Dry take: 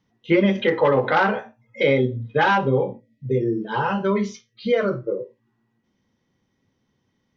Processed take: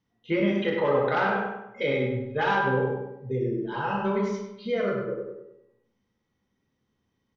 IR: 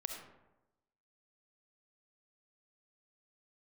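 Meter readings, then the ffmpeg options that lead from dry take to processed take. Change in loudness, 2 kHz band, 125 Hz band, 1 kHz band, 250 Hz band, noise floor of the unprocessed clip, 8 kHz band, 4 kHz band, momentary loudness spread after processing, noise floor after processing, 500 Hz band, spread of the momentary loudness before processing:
−5.5 dB, −5.0 dB, −5.5 dB, −5.0 dB, −5.5 dB, −72 dBFS, can't be measured, −6.5 dB, 10 LU, −77 dBFS, −5.5 dB, 12 LU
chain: -filter_complex "[0:a]asplit=2[link_01][link_02];[link_02]adelay=99,lowpass=frequency=2700:poles=1,volume=-4dB,asplit=2[link_03][link_04];[link_04]adelay=99,lowpass=frequency=2700:poles=1,volume=0.46,asplit=2[link_05][link_06];[link_06]adelay=99,lowpass=frequency=2700:poles=1,volume=0.46,asplit=2[link_07][link_08];[link_08]adelay=99,lowpass=frequency=2700:poles=1,volume=0.46,asplit=2[link_09][link_10];[link_10]adelay=99,lowpass=frequency=2700:poles=1,volume=0.46,asplit=2[link_11][link_12];[link_12]adelay=99,lowpass=frequency=2700:poles=1,volume=0.46[link_13];[link_01][link_03][link_05][link_07][link_09][link_11][link_13]amix=inputs=7:normalize=0[link_14];[1:a]atrim=start_sample=2205,asetrate=88200,aresample=44100[link_15];[link_14][link_15]afir=irnorm=-1:irlink=0"

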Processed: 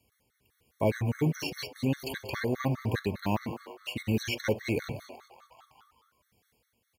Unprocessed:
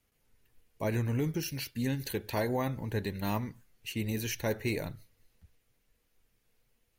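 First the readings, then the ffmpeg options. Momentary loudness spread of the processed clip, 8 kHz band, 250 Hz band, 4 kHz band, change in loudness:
11 LU, −3.0 dB, +2.5 dB, +3.0 dB, +2.0 dB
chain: -filter_complex "[0:a]acrossover=split=6400[link_01][link_02];[link_02]acompressor=threshold=-52dB:ratio=4:attack=1:release=60[link_03];[link_01][link_03]amix=inputs=2:normalize=0,highpass=frequency=57:width=0.5412,highpass=frequency=57:width=1.3066,asplit=8[link_04][link_05][link_06][link_07][link_08][link_09][link_10][link_11];[link_05]adelay=187,afreqshift=130,volume=-16.5dB[link_12];[link_06]adelay=374,afreqshift=260,volume=-20.4dB[link_13];[link_07]adelay=561,afreqshift=390,volume=-24.3dB[link_14];[link_08]adelay=748,afreqshift=520,volume=-28.1dB[link_15];[link_09]adelay=935,afreqshift=650,volume=-32dB[link_16];[link_10]adelay=1122,afreqshift=780,volume=-35.9dB[link_17];[link_11]adelay=1309,afreqshift=910,volume=-39.8dB[link_18];[link_04][link_12][link_13][link_14][link_15][link_16][link_17][link_18]amix=inputs=8:normalize=0,asoftclip=type=hard:threshold=-21.5dB,tremolo=f=1.4:d=0.38,afftfilt=real='re*gt(sin(2*PI*4.9*pts/sr)*(1-2*mod(floor(b*sr/1024/1100),2)),0)':imag='im*gt(sin(2*PI*4.9*pts/sr)*(1-2*mod(floor(b*sr/1024/1100),2)),0)':win_size=1024:overlap=0.75,volume=8dB"

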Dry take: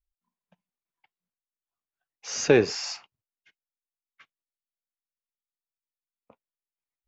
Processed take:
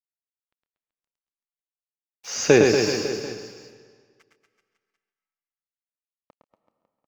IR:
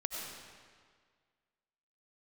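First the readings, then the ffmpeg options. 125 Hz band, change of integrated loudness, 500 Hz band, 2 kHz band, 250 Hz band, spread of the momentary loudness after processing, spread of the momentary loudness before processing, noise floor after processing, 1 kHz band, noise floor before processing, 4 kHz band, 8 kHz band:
+5.5 dB, +4.0 dB, +5.5 dB, +5.5 dB, +6.0 dB, 18 LU, 19 LU, below −85 dBFS, +5.5 dB, below −85 dBFS, +4.5 dB, can't be measured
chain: -filter_complex "[0:a]aeval=exprs='sgn(val(0))*max(abs(val(0))-0.00282,0)':channel_layout=same,aecho=1:1:110|236.5|382|549.3|741.7:0.631|0.398|0.251|0.158|0.1,asplit=2[link_01][link_02];[1:a]atrim=start_sample=2205,adelay=136[link_03];[link_02][link_03]afir=irnorm=-1:irlink=0,volume=-13.5dB[link_04];[link_01][link_04]amix=inputs=2:normalize=0,volume=3dB"

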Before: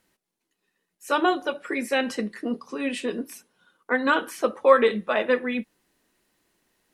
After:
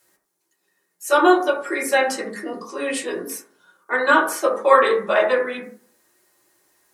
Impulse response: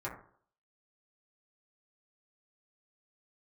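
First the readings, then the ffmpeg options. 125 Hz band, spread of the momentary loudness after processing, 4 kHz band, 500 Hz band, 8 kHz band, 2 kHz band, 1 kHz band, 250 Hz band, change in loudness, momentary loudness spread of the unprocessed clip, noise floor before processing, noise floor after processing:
can't be measured, 16 LU, +3.0 dB, +4.5 dB, +11.0 dB, +6.0 dB, +6.5 dB, +2.0 dB, +5.0 dB, 12 LU, −81 dBFS, −73 dBFS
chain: -filter_complex "[0:a]bass=frequency=250:gain=-11,treble=frequency=4000:gain=14[link_01];[1:a]atrim=start_sample=2205[link_02];[link_01][link_02]afir=irnorm=-1:irlink=0,volume=3dB"

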